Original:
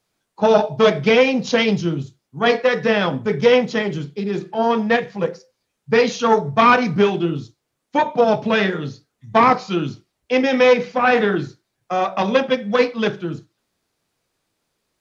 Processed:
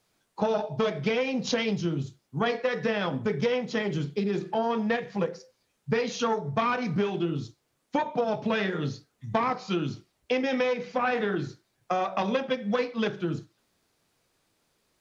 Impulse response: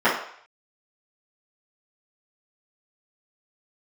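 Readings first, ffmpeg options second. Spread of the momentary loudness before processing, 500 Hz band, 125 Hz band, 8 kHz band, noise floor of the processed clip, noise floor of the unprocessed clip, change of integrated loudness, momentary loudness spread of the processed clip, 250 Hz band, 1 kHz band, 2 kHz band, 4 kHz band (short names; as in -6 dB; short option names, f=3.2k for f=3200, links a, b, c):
11 LU, -11.0 dB, -6.0 dB, n/a, -75 dBFS, -76 dBFS, -10.5 dB, 6 LU, -8.5 dB, -11.0 dB, -11.5 dB, -10.0 dB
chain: -af "acompressor=threshold=-26dB:ratio=6,volume=1.5dB"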